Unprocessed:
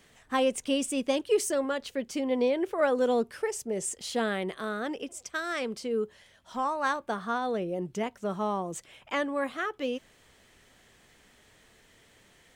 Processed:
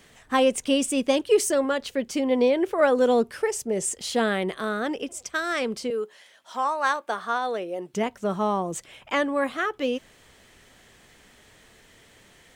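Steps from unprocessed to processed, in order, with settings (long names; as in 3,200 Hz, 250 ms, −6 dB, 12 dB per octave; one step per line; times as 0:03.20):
0:05.90–0:07.94: Bessel high-pass filter 520 Hz, order 2
level +5.5 dB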